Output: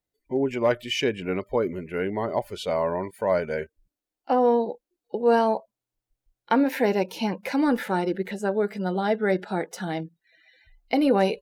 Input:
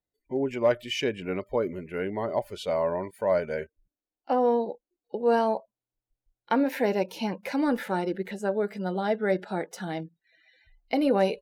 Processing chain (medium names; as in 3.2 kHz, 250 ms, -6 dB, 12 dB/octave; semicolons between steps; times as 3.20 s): dynamic bell 590 Hz, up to -4 dB, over -41 dBFS, Q 6.6; trim +3.5 dB